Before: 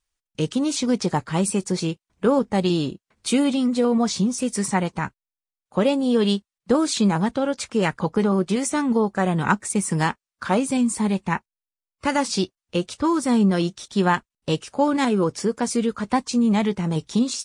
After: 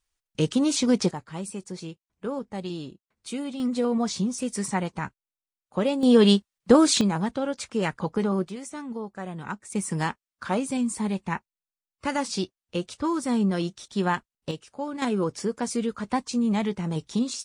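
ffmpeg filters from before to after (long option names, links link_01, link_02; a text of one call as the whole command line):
ffmpeg -i in.wav -af "asetnsamples=nb_out_samples=441:pad=0,asendcmd='1.11 volume volume -12.5dB;3.6 volume volume -5dB;6.03 volume volume 3dB;7.01 volume volume -5dB;8.49 volume volume -14dB;9.72 volume volume -5.5dB;14.51 volume volume -12.5dB;15.02 volume volume -5dB',volume=0dB" out.wav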